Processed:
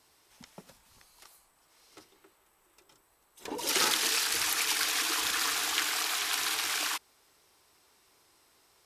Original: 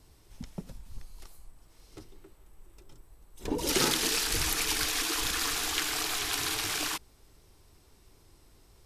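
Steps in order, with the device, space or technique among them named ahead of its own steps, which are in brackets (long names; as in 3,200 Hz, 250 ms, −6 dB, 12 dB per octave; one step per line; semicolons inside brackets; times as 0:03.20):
0:04.87–0:05.90: low-shelf EQ 370 Hz +5.5 dB
filter by subtraction (in parallel: low-pass filter 1,200 Hz 12 dB per octave + polarity inversion)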